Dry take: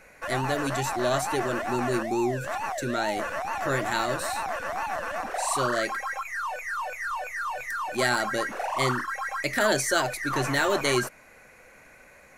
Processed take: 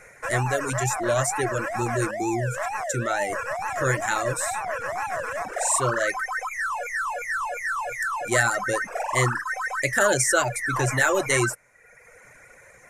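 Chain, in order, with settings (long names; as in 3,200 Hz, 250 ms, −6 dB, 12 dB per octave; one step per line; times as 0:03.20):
notch filter 4,600 Hz, Q 29
reverb reduction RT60 0.9 s
octave-band graphic EQ 125/250/500/2,000/4,000/8,000 Hz +9/−6/+5/+7/−7/+11 dB
wrong playback speed 25 fps video run at 24 fps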